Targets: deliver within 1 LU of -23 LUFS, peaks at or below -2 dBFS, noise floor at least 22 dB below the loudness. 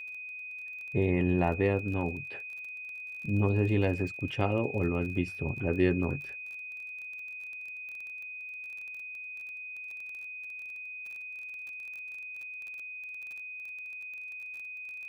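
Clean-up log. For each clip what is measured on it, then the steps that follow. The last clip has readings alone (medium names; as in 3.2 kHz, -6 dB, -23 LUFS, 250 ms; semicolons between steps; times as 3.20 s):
tick rate 25 per s; steady tone 2.5 kHz; tone level -39 dBFS; loudness -33.5 LUFS; peak level -12.5 dBFS; loudness target -23.0 LUFS
-> de-click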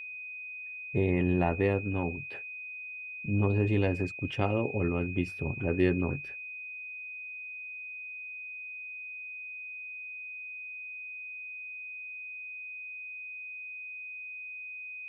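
tick rate 0 per s; steady tone 2.5 kHz; tone level -39 dBFS
-> band-stop 2.5 kHz, Q 30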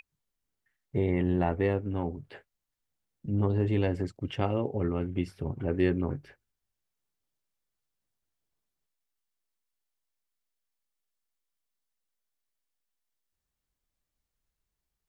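steady tone not found; loudness -30.0 LUFS; peak level -12.5 dBFS; loudness target -23.0 LUFS
-> trim +7 dB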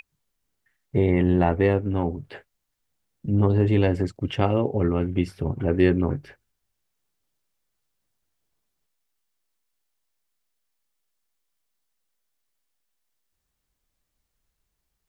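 loudness -23.0 LUFS; peak level -5.5 dBFS; noise floor -79 dBFS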